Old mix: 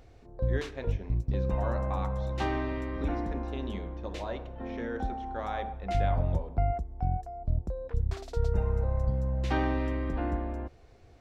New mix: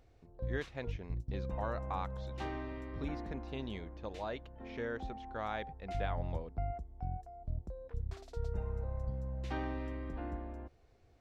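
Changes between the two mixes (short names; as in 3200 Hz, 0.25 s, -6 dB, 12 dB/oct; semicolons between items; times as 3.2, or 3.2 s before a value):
background -10.0 dB; reverb: off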